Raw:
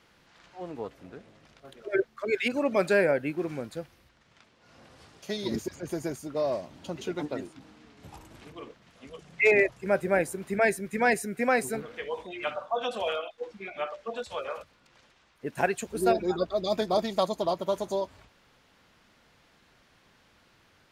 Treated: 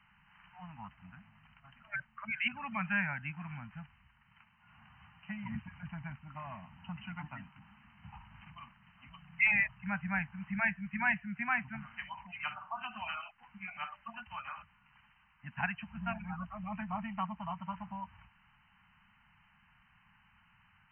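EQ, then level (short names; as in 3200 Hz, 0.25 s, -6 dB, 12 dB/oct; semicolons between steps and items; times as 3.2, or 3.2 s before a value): Chebyshev band-stop 200–870 Hz, order 3; dynamic EQ 630 Hz, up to -3 dB, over -43 dBFS, Q 0.72; brick-wall FIR low-pass 3100 Hz; -1.5 dB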